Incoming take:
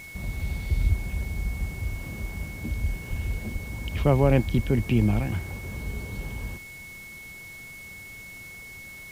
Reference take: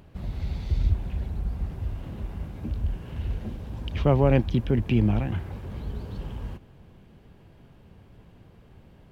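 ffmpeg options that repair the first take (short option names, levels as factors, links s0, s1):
-filter_complex "[0:a]adeclick=t=4,bandreject=f=2200:w=30,asplit=3[s0][s1][s2];[s0]afade=t=out:st=3.09:d=0.02[s3];[s1]highpass=f=140:w=0.5412,highpass=f=140:w=1.3066,afade=t=in:st=3.09:d=0.02,afade=t=out:st=3.21:d=0.02[s4];[s2]afade=t=in:st=3.21:d=0.02[s5];[s3][s4][s5]amix=inputs=3:normalize=0,asplit=3[s6][s7][s8];[s6]afade=t=out:st=3.52:d=0.02[s9];[s7]highpass=f=140:w=0.5412,highpass=f=140:w=1.3066,afade=t=in:st=3.52:d=0.02,afade=t=out:st=3.64:d=0.02[s10];[s8]afade=t=in:st=3.64:d=0.02[s11];[s9][s10][s11]amix=inputs=3:normalize=0,asplit=3[s12][s13][s14];[s12]afade=t=out:st=4.55:d=0.02[s15];[s13]highpass=f=140:w=0.5412,highpass=f=140:w=1.3066,afade=t=in:st=4.55:d=0.02,afade=t=out:st=4.67:d=0.02[s16];[s14]afade=t=in:st=4.67:d=0.02[s17];[s15][s16][s17]amix=inputs=3:normalize=0,afwtdn=0.0032"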